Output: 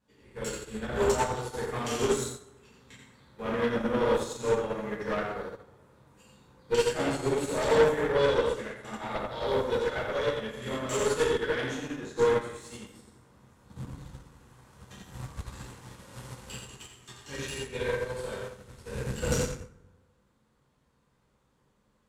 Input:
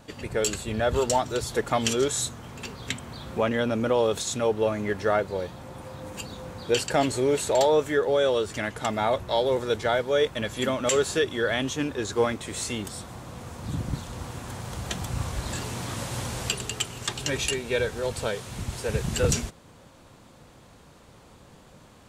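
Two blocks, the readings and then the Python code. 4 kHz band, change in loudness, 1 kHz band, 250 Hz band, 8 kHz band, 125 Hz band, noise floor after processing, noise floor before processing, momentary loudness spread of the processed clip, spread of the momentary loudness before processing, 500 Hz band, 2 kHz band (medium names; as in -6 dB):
-8.0 dB, -3.0 dB, -4.5 dB, -4.5 dB, -8.5 dB, -6.0 dB, -70 dBFS, -52 dBFS, 20 LU, 14 LU, -3.0 dB, -4.0 dB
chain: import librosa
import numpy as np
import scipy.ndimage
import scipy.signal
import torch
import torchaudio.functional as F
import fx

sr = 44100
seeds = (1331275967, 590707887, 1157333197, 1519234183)

y = x + 10.0 ** (-4.5 / 20.0) * np.pad(x, (int(87 * sr / 1000.0), 0))[:len(x)]
y = fx.rev_plate(y, sr, seeds[0], rt60_s=1.5, hf_ratio=0.45, predelay_ms=0, drr_db=-10.0)
y = fx.tube_stage(y, sr, drive_db=9.0, bias=0.55)
y = fx.peak_eq(y, sr, hz=670.0, db=-10.0, octaves=0.3)
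y = fx.upward_expand(y, sr, threshold_db=-27.0, expansion=2.5)
y = y * 10.0 ** (-4.5 / 20.0)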